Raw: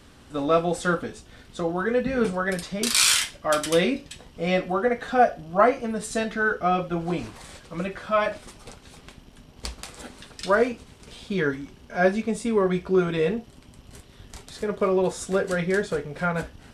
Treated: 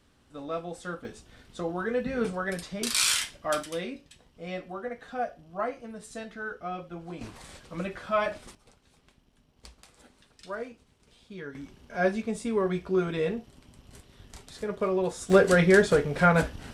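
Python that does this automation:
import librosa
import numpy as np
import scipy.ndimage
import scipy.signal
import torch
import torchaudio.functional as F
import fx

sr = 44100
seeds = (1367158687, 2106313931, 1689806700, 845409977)

y = fx.gain(x, sr, db=fx.steps((0.0, -13.0), (1.05, -5.5), (3.63, -13.0), (7.21, -4.0), (8.55, -16.0), (11.55, -5.0), (15.3, 5.0)))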